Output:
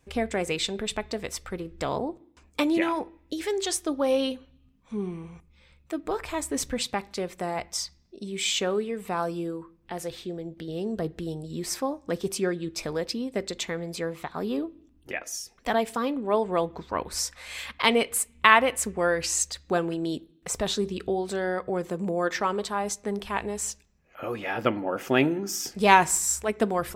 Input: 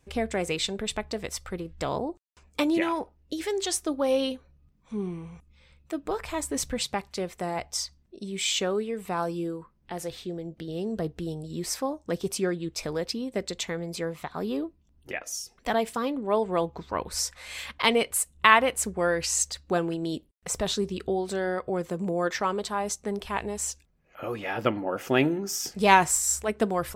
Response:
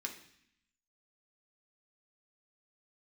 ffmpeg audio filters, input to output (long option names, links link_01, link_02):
-filter_complex "[0:a]asplit=2[link_01][link_02];[1:a]atrim=start_sample=2205,lowpass=3700[link_03];[link_02][link_03]afir=irnorm=-1:irlink=0,volume=-13dB[link_04];[link_01][link_04]amix=inputs=2:normalize=0"